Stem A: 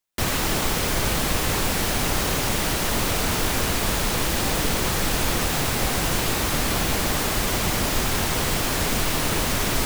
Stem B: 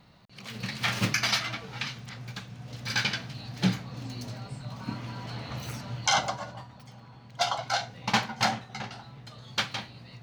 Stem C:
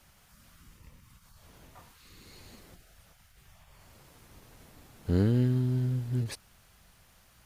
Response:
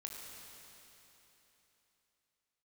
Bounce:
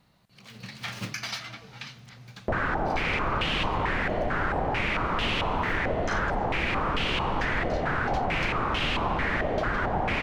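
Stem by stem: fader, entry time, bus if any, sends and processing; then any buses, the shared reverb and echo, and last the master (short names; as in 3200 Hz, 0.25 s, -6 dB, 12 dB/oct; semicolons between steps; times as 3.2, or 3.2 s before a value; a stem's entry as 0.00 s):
+2.0 dB, 2.30 s, send -5 dB, stepped low-pass 4.5 Hz 640–2900 Hz
-7.5 dB, 0.00 s, send -15.5 dB, dry
-16.0 dB, 0.00 s, no send, dry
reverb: on, RT60 3.5 s, pre-delay 19 ms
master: compressor 2.5:1, threshold -29 dBFS, peak gain reduction 11.5 dB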